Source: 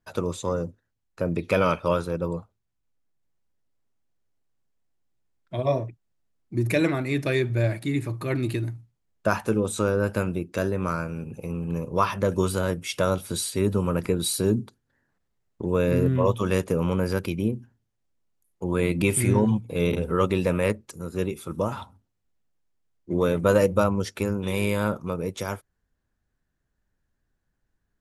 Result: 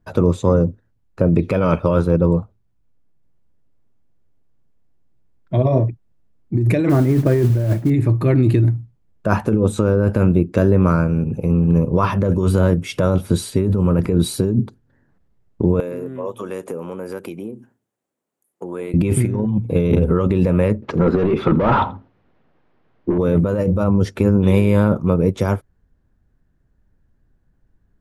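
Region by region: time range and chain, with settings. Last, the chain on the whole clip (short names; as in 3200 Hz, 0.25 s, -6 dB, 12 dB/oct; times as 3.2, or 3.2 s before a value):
6.89–7.9 LPF 1700 Hz 24 dB/oct + modulation noise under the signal 14 dB
15.8–18.94 compressor 3:1, threshold -34 dBFS + HPF 370 Hz + resonant high shelf 6400 Hz +6 dB, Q 1.5
20.82–23.18 overdrive pedal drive 28 dB, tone 5700 Hz, clips at -12.5 dBFS + air absorption 300 m + echo 83 ms -21.5 dB
whole clip: low shelf 460 Hz +9.5 dB; negative-ratio compressor -19 dBFS, ratio -1; high shelf 2800 Hz -9.5 dB; gain +4.5 dB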